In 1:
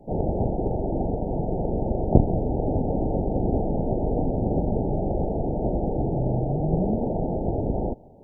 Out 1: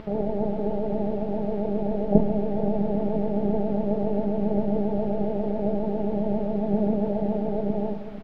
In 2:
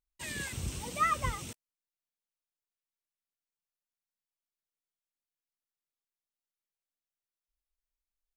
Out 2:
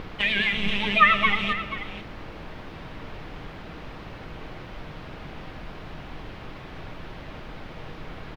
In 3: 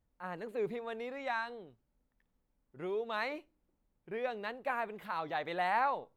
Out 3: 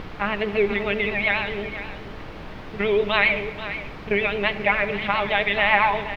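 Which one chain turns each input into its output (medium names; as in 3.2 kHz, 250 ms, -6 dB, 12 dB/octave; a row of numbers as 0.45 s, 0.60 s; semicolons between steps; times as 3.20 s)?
high-pass 93 Hz 12 dB/octave; gate with hold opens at -38 dBFS; high-order bell 2.7 kHz +15.5 dB 1.1 oct; upward compressor, threshold -27 dBFS; robot voice 210 Hz; added noise pink -50 dBFS; vibrato 7.4 Hz 92 cents; distance through air 330 m; delay 483 ms -12.5 dB; simulated room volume 1900 m³, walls mixed, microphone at 0.54 m; peak normalisation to -2 dBFS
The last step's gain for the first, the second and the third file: +3.0 dB, +12.5 dB, +15.0 dB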